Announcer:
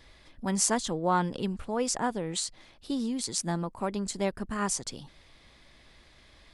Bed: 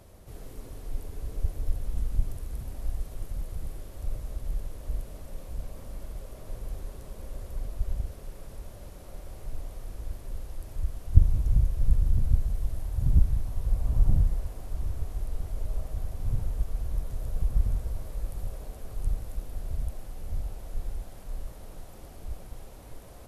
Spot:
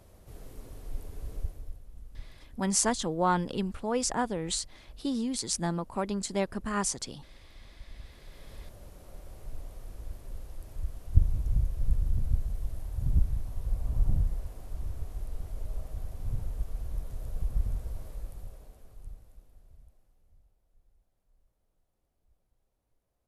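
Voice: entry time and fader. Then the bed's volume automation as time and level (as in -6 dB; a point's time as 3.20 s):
2.15 s, 0.0 dB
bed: 1.36 s -3.5 dB
1.85 s -17.5 dB
7.87 s -17.5 dB
8.50 s -4.5 dB
18.07 s -4.5 dB
20.58 s -33 dB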